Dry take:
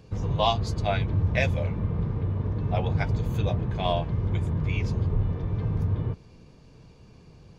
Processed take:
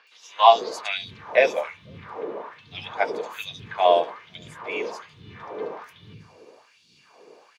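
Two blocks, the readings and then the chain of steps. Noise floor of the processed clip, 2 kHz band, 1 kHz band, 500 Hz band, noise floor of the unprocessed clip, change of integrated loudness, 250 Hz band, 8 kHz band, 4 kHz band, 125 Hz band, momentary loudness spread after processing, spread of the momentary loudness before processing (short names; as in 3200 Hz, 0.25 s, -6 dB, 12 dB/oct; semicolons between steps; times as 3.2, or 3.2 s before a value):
-59 dBFS, +5.5 dB, +9.5 dB, +8.0 dB, -52 dBFS, +3.5 dB, -10.5 dB, n/a, +5.0 dB, -25.0 dB, 23 LU, 4 LU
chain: LFO high-pass sine 1.2 Hz 420–3900 Hz; three bands offset in time mids, highs, lows 70/500 ms, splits 200/4400 Hz; gain +5.5 dB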